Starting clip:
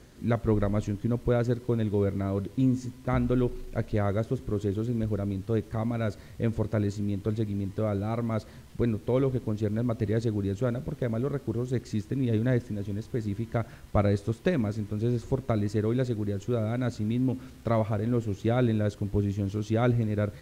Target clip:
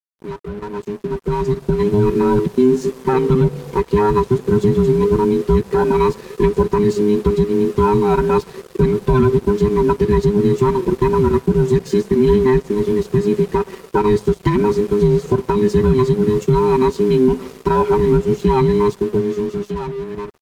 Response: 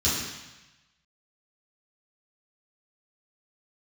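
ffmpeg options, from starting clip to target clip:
-af "afftfilt=real='real(if(between(b,1,1008),(2*floor((b-1)/24)+1)*24-b,b),0)':imag='imag(if(between(b,1,1008),(2*floor((b-1)/24)+1)*24-b,b),0)*if(between(b,1,1008),-1,1)':win_size=2048:overlap=0.75,highpass=40,equalizer=f=88:t=o:w=1.6:g=9.5,aecho=1:1:5.2:0.93,acompressor=threshold=0.0501:ratio=1.5,alimiter=limit=0.133:level=0:latency=1:release=146,dynaudnorm=f=170:g=17:m=4.73,aeval=exprs='sgn(val(0))*max(abs(val(0))-0.0158,0)':c=same"

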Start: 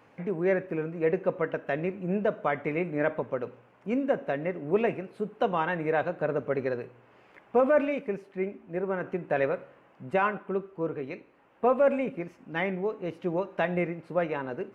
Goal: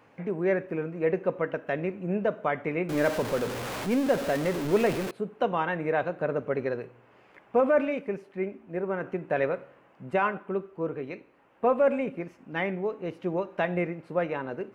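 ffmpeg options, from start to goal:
-filter_complex "[0:a]asettb=1/sr,asplit=3[s0][s1][s2];[s0]atrim=end=2.894[s3];[s1]atrim=start=2.89:end=5.11,asetpts=PTS-STARTPTS,afade=t=in:d=0.004:c=qsin,afade=t=out:st=2.216:d=0.004:c=qsin,aeval=exprs='val(0)+0.5*0.0376*sgn(val(0))':c=same[s4];[s2]atrim=start=5.106[s5];[s3][s4]acrossfade=d=0.004:c1=hsin:c2=qsin[s6];[s6][s5]acrossfade=d=0.004:c1=qsin:c2=hsin"

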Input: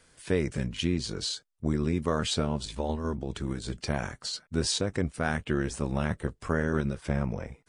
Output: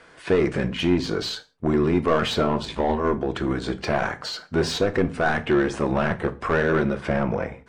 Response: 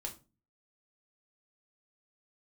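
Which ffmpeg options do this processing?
-filter_complex "[0:a]lowpass=f=3200:p=1,asplit=2[s0][s1];[s1]highpass=f=720:p=1,volume=12.6,asoftclip=type=tanh:threshold=0.251[s2];[s0][s2]amix=inputs=2:normalize=0,lowpass=f=1400:p=1,volume=0.501,asplit=2[s3][s4];[1:a]atrim=start_sample=2205,afade=t=out:st=0.2:d=0.01,atrim=end_sample=9261,asetrate=33957,aresample=44100[s5];[s4][s5]afir=irnorm=-1:irlink=0,volume=0.562[s6];[s3][s6]amix=inputs=2:normalize=0"

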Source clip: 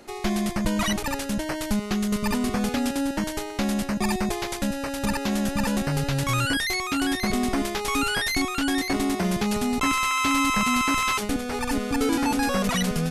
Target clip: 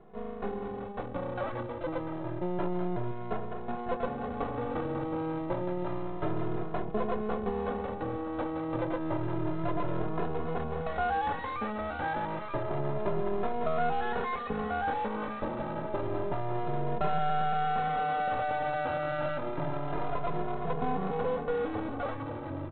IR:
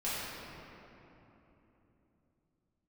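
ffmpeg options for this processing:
-filter_complex "[0:a]lowpass=f=1300:w=0.5412,lowpass=f=1300:w=1.3066,equalizer=f=250:w=0.69:g=-5.5,dynaudnorm=f=600:g=5:m=1.58,aemphasis=mode=production:type=riaa,asplit=2[s0][s1];[s1]adelay=13,volume=0.335[s2];[s0][s2]amix=inputs=2:normalize=0,asplit=2[s3][s4];[s4]aecho=0:1:457|914|1371|1828:0.158|0.0713|0.0321|0.0144[s5];[s3][s5]amix=inputs=2:normalize=0,asetrate=25442,aresample=44100,highpass=f=140:p=1,aresample=8000,aeval=exprs='max(val(0),0)':c=same,aresample=44100,acompressor=threshold=0.0355:ratio=5,asplit=2[s6][s7];[s7]adelay=2.4,afreqshift=0.29[s8];[s6][s8]amix=inputs=2:normalize=1,volume=2.37"

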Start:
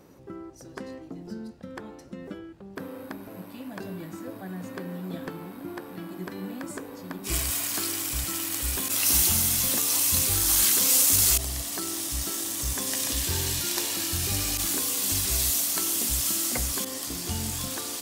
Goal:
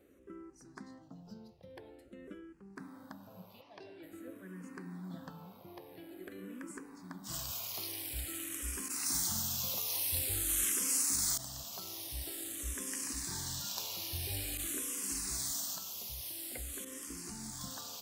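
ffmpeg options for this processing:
-filter_complex "[0:a]asplit=3[s0][s1][s2];[s0]afade=t=out:st=3.6:d=0.02[s3];[s1]highpass=170,equalizer=f=180:t=q:w=4:g=-7,equalizer=f=510:t=q:w=4:g=-8,equalizer=f=1300:t=q:w=4:g=7,equalizer=f=5700:t=q:w=4:g=6,lowpass=f=6300:w=0.5412,lowpass=f=6300:w=1.3066,afade=t=in:st=3.6:d=0.02,afade=t=out:st=4.02:d=0.02[s4];[s2]afade=t=in:st=4.02:d=0.02[s5];[s3][s4][s5]amix=inputs=3:normalize=0,asettb=1/sr,asplit=3[s6][s7][s8];[s6]atrim=end=15.744[s9];[s7]atrim=start=15.74:end=17.61,asetpts=PTS-STARTPTS,afade=t=in:d=0.004:c=qsin,afade=t=out:st=1.866:d=0.004:c=qsin,acompressor=threshold=0.0398:ratio=6[s10];[s8]atrim=start=17.606[s11];[s9][s10]acrossfade=d=0.004:c1=hsin:c2=qsin[s12];[s12][s11]acrossfade=d=0.004:c1=qsin:c2=hsin,asplit=2[s13][s14];[s14]afreqshift=-0.48[s15];[s13][s15]amix=inputs=2:normalize=1,volume=0.376"

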